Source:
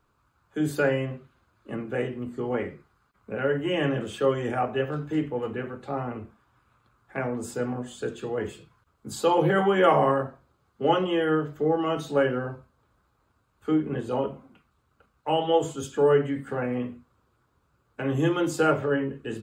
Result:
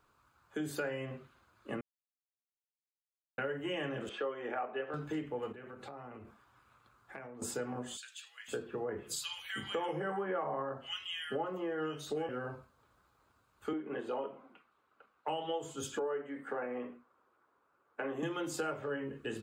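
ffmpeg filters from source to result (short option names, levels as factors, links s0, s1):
-filter_complex "[0:a]asettb=1/sr,asplit=3[s0][s1][s2];[s0]atrim=end=4.094[s3];[s1]atrim=start=4.09:end=4.94,asetpts=PTS-STARTPTS,afade=t=in:d=0.004:c=qsin,afade=t=out:st=0.846:d=0.004:c=qsin,highpass=320,lowpass=2500[s4];[s2]atrim=start=4.936[s5];[s3][s4]acrossfade=d=0.004:c1=hsin:c2=qsin[s6];[s6][s5]acrossfade=d=0.004:c1=qsin:c2=hsin,asettb=1/sr,asplit=3[s7][s8][s9];[s7]atrim=end=5.524[s10];[s8]atrim=start=5.52:end=7.42,asetpts=PTS-STARTPTS,afade=t=in:d=0.004:c=qsin,afade=t=out:st=1.896:d=0.004:c=qsin,acompressor=threshold=0.00794:ratio=10:attack=3.2:release=140:knee=1:detection=peak[s11];[s9]atrim=start=7.416[s12];[s10][s11]acrossfade=d=0.004:c1=hsin:c2=qsin[s13];[s13][s12]acrossfade=d=0.004:c1=qsin:c2=hsin,asettb=1/sr,asplit=3[s14][s15][s16];[s14]atrim=end=7.974[s17];[s15]atrim=start=7.97:end=12.29,asetpts=PTS-STARTPTS,afade=t=in:d=0.004:c=qsin,afade=t=out:st=4.316:d=0.004:c=qsin,acrossover=split=2100[s18][s19];[s18]adelay=510[s20];[s20][s19]amix=inputs=2:normalize=0,atrim=end_sample=190512[s21];[s16]atrim=start=12.286[s22];[s17][s21]acrossfade=d=0.004:c1=hsin:c2=qsin[s23];[s23][s22]acrossfade=d=0.004:c1=qsin:c2=hsin,asettb=1/sr,asplit=3[s24][s25][s26];[s24]atrim=end=13.734[s27];[s25]atrim=start=13.73:end=15.28,asetpts=PTS-STARTPTS,afade=t=in:d=0.004:c=qsin,afade=t=out:st=1.546:d=0.004:c=qsin,acrossover=split=230 3400:gain=0.112 1 0.224[s28][s29][s30];[s28][s29][s30]amix=inputs=3:normalize=0[s31];[s26]atrim=start=15.276[s32];[s27][s31]acrossfade=d=0.004:c1=hsin:c2=qsin[s33];[s33][s32]acrossfade=d=0.004:c1=qsin:c2=hsin,asettb=1/sr,asplit=3[s34][s35][s36];[s34]atrim=end=15.994[s37];[s35]atrim=start=15.99:end=18.23,asetpts=PTS-STARTPTS,afade=t=in:d=0.004:c=qsin,afade=t=out:st=2.236:d=0.004:c=qsin,acrossover=split=250 2200:gain=0.0891 1 0.2[s38][s39][s40];[s38][s39][s40]amix=inputs=3:normalize=0[s41];[s36]atrim=start=18.226[s42];[s37][s41]acrossfade=d=0.004:c1=hsin:c2=qsin[s43];[s43][s42]acrossfade=d=0.004:c1=qsin:c2=hsin,asplit=3[s44][s45][s46];[s44]atrim=end=1.81,asetpts=PTS-STARTPTS,afade=t=out:st=1.806:d=0.004:c=hsin[s47];[s45]atrim=start=1.81:end=3.38,asetpts=PTS-STARTPTS,volume=0[s48];[s46]atrim=start=3.38,asetpts=PTS-STARTPTS,afade=t=in:d=0.004:c=hsin[s49];[s47][s48][s49]concat=n=3:v=0:a=1,lowshelf=f=340:g=-8,acompressor=threshold=0.0158:ratio=5,volume=1.12"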